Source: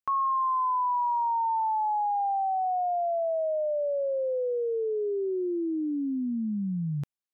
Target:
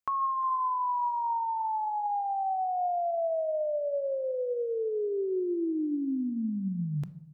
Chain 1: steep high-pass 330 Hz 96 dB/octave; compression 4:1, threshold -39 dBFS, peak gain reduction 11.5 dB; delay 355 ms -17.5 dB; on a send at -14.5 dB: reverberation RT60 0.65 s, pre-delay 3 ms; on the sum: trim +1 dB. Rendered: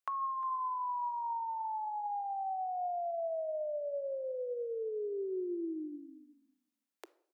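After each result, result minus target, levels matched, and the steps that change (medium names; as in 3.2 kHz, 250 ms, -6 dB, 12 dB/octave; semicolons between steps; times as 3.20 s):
compression: peak gain reduction +6.5 dB; 250 Hz band -5.5 dB
change: compression 4:1, threshold -30 dBFS, peak gain reduction 5 dB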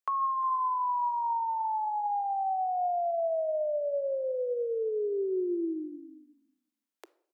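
250 Hz band -6.5 dB
remove: steep high-pass 330 Hz 96 dB/octave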